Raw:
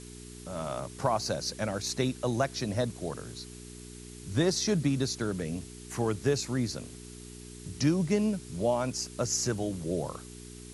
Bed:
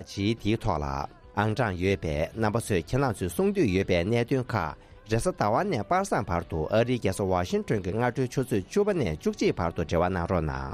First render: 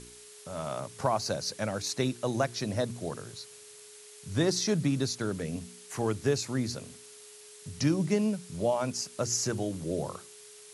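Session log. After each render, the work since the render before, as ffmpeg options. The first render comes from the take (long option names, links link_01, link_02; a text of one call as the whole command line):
ffmpeg -i in.wav -af "bandreject=frequency=60:width_type=h:width=4,bandreject=frequency=120:width_type=h:width=4,bandreject=frequency=180:width_type=h:width=4,bandreject=frequency=240:width_type=h:width=4,bandreject=frequency=300:width_type=h:width=4,bandreject=frequency=360:width_type=h:width=4" out.wav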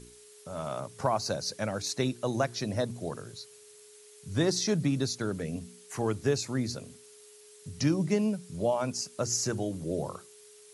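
ffmpeg -i in.wav -af "afftdn=noise_reduction=6:noise_floor=-51" out.wav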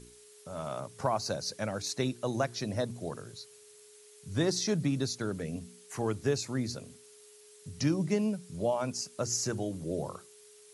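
ffmpeg -i in.wav -af "volume=-2dB" out.wav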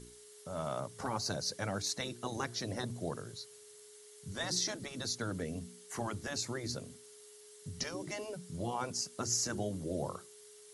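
ffmpeg -i in.wav -af "bandreject=frequency=2500:width=10,afftfilt=real='re*lt(hypot(re,im),0.141)':imag='im*lt(hypot(re,im),0.141)':win_size=1024:overlap=0.75" out.wav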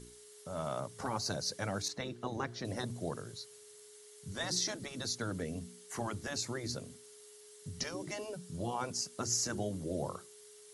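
ffmpeg -i in.wav -filter_complex "[0:a]asettb=1/sr,asplit=3[link_01][link_02][link_03];[link_01]atrim=end=1.884[link_04];[link_02]atrim=start=1.88:end=2.65,asetpts=PTS-STARTPTS,afade=type=in:duration=0.004:curve=qsin,afade=type=out:start_time=0.766:duration=0.004:curve=qsin,aemphasis=mode=reproduction:type=75fm[link_05];[link_03]atrim=start=2.646[link_06];[link_04][link_05]acrossfade=duration=0.004:curve1=hsin:curve2=qsin[link_07];[link_07][link_06]acrossfade=duration=0.004:curve1=qsin:curve2=hsin,asettb=1/sr,asplit=3[link_08][link_09][link_10];[link_08]atrim=end=8.144[link_11];[link_09]atrim=start=8.14:end=8.8,asetpts=PTS-STARTPTS,afade=type=in:duration=0.004:curve=qsin,afade=type=out:start_time=0.656:duration=0.004:curve=qsin,bandreject=frequency=2100:width=12[link_12];[link_10]atrim=start=8.796[link_13];[link_11][link_12]acrossfade=duration=0.004:curve1=hsin:curve2=qsin[link_14];[link_14][link_13]acrossfade=duration=0.004:curve1=qsin:curve2=hsin" out.wav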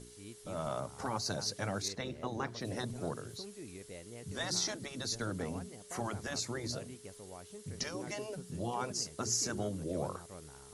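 ffmpeg -i in.wav -i bed.wav -filter_complex "[1:a]volume=-24.5dB[link_01];[0:a][link_01]amix=inputs=2:normalize=0" out.wav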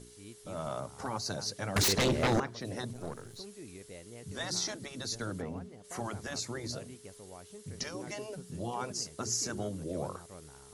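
ffmpeg -i in.wav -filter_complex "[0:a]asettb=1/sr,asplit=3[link_01][link_02][link_03];[link_01]atrim=end=1.764[link_04];[link_02]atrim=start=1.76:end=2.4,asetpts=PTS-STARTPTS,afade=type=in:duration=0.004:curve=qsin,afade=type=out:start_time=0.636:duration=0.004:curve=qsin,aeval=exprs='0.0708*sin(PI/2*5.01*val(0)/0.0708)':channel_layout=same[link_05];[link_03]atrim=start=2.396[link_06];[link_04][link_05]acrossfade=duration=0.004:curve1=hsin:curve2=qsin[link_07];[link_07][link_06]acrossfade=duration=0.004:curve1=qsin:curve2=hsin,asettb=1/sr,asplit=3[link_08][link_09][link_10];[link_08]atrim=end=2.934[link_11];[link_09]atrim=start=2.93:end=3.4,asetpts=PTS-STARTPTS,afade=type=in:duration=0.004:curve=qsin,afade=type=out:start_time=0.466:duration=0.004:curve=qsin,aeval=exprs='if(lt(val(0),0),0.447*val(0),val(0))':channel_layout=same[link_12];[link_10]atrim=start=3.396[link_13];[link_11][link_12]acrossfade=duration=0.004:curve1=hsin:curve2=qsin[link_14];[link_14][link_13]acrossfade=duration=0.004:curve1=qsin:curve2=hsin,asplit=3[link_15][link_16][link_17];[link_15]afade=type=out:start_time=5.4:duration=0.02[link_18];[link_16]lowpass=frequency=1800:poles=1,afade=type=in:start_time=5.4:duration=0.02,afade=type=out:start_time=5.83:duration=0.02[link_19];[link_17]afade=type=in:start_time=5.83:duration=0.02[link_20];[link_18][link_19][link_20]amix=inputs=3:normalize=0" out.wav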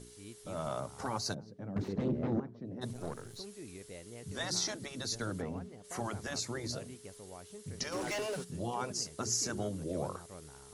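ffmpeg -i in.wav -filter_complex "[0:a]asplit=3[link_01][link_02][link_03];[link_01]afade=type=out:start_time=1.33:duration=0.02[link_04];[link_02]bandpass=frequency=210:width_type=q:width=1.2,afade=type=in:start_time=1.33:duration=0.02,afade=type=out:start_time=2.81:duration=0.02[link_05];[link_03]afade=type=in:start_time=2.81:duration=0.02[link_06];[link_04][link_05][link_06]amix=inputs=3:normalize=0,asplit=3[link_07][link_08][link_09];[link_07]afade=type=out:start_time=7.91:duration=0.02[link_10];[link_08]asplit=2[link_11][link_12];[link_12]highpass=frequency=720:poles=1,volume=21dB,asoftclip=type=tanh:threshold=-28.5dB[link_13];[link_11][link_13]amix=inputs=2:normalize=0,lowpass=frequency=5100:poles=1,volume=-6dB,afade=type=in:start_time=7.91:duration=0.02,afade=type=out:start_time=8.43:duration=0.02[link_14];[link_09]afade=type=in:start_time=8.43:duration=0.02[link_15];[link_10][link_14][link_15]amix=inputs=3:normalize=0" out.wav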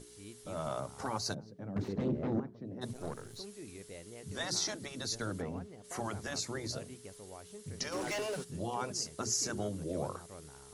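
ffmpeg -i in.wav -af "bandreject=frequency=60:width_type=h:width=6,bandreject=frequency=120:width_type=h:width=6,bandreject=frequency=180:width_type=h:width=6,bandreject=frequency=240:width_type=h:width=6" out.wav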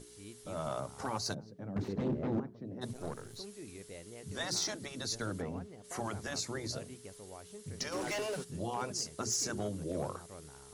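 ffmpeg -i in.wav -af "volume=27dB,asoftclip=hard,volume=-27dB" out.wav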